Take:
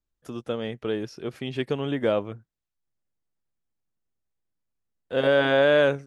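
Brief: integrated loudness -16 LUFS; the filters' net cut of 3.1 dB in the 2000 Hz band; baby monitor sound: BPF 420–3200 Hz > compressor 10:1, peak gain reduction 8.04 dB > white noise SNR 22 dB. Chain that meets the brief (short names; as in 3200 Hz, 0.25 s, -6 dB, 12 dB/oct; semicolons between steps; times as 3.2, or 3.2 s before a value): BPF 420–3200 Hz; bell 2000 Hz -4 dB; compressor 10:1, threshold -24 dBFS; white noise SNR 22 dB; gain +16 dB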